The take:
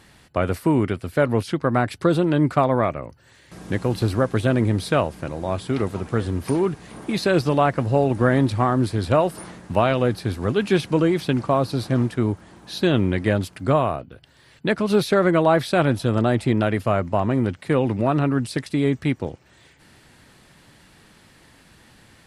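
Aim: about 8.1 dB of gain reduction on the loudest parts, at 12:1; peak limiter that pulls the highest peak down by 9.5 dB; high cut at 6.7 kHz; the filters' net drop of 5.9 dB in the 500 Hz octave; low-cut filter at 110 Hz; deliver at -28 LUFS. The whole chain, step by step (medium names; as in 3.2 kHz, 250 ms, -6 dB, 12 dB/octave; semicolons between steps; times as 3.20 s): high-pass 110 Hz; low-pass 6.7 kHz; peaking EQ 500 Hz -8 dB; compression 12:1, threshold -24 dBFS; trim +4 dB; peak limiter -16 dBFS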